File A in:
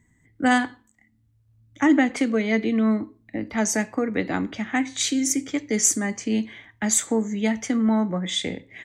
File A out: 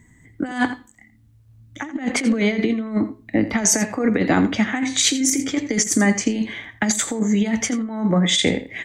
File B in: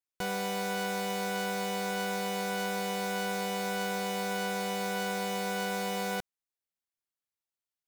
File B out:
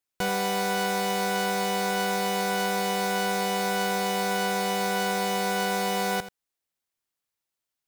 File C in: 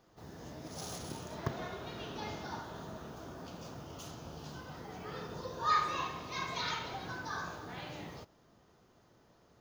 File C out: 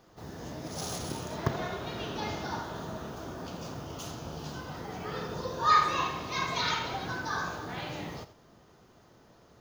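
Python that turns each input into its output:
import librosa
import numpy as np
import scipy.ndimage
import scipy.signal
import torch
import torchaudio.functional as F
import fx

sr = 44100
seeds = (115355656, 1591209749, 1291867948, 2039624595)

p1 = fx.over_compress(x, sr, threshold_db=-25.0, ratio=-0.5)
p2 = p1 + fx.echo_single(p1, sr, ms=84, db=-14.0, dry=0)
y = p2 * 10.0 ** (6.5 / 20.0)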